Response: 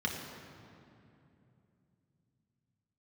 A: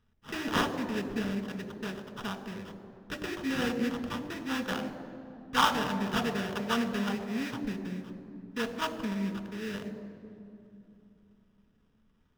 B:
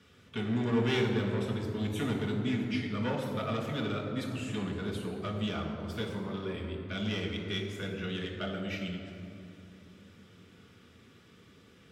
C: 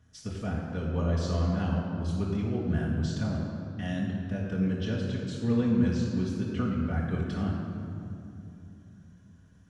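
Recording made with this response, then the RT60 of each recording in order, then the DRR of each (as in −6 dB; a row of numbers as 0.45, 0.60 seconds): B; 2.8, 2.8, 2.8 seconds; 7.0, −1.0, −8.0 decibels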